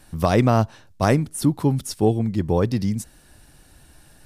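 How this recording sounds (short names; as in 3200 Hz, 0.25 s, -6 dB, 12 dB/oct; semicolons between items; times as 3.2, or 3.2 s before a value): noise floor -52 dBFS; spectral tilt -6.5 dB/oct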